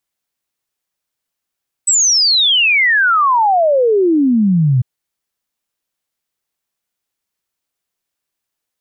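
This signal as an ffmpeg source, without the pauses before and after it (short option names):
-f lavfi -i "aevalsrc='0.355*clip(min(t,2.95-t)/0.01,0,1)*sin(2*PI*8100*2.95/log(120/8100)*(exp(log(120/8100)*t/2.95)-1))':d=2.95:s=44100"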